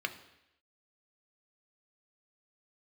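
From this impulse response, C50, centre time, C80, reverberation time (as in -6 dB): 13.0 dB, 10 ms, 15.5 dB, 0.85 s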